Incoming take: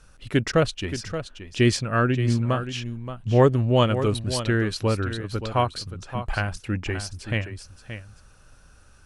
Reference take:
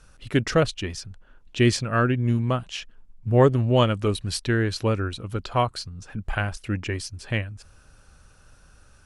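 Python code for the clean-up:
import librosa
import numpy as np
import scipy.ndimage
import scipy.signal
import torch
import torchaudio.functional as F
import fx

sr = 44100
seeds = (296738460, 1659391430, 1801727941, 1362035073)

y = fx.fix_interpolate(x, sr, at_s=(0.52,), length_ms=12.0)
y = fx.fix_echo_inverse(y, sr, delay_ms=575, level_db=-10.5)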